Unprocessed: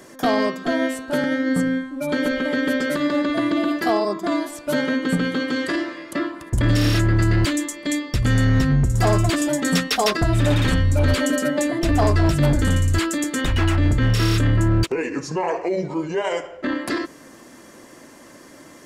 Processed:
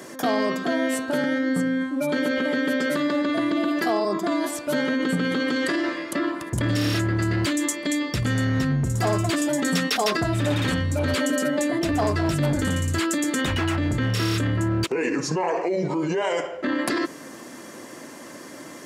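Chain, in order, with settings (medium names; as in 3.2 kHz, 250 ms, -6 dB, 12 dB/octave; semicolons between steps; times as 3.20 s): high-pass 120 Hz 12 dB/octave; in parallel at 0 dB: compressor with a negative ratio -28 dBFS, ratio -1; on the sum: trim -5 dB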